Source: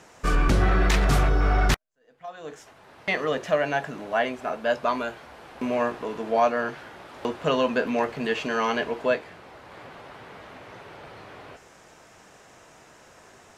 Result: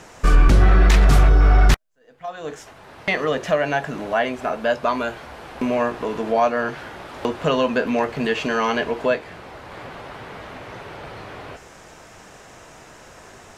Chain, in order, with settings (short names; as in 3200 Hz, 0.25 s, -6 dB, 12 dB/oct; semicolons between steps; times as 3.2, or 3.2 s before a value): in parallel at +2 dB: compressor, threshold -29 dBFS, peak gain reduction 12 dB; on the sum: low shelf 72 Hz +9 dB